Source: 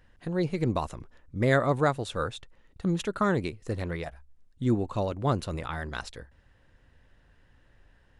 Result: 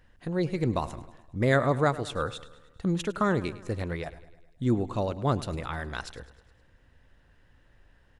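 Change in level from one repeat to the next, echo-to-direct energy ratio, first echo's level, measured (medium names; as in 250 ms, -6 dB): -4.5 dB, -15.5 dB, -17.5 dB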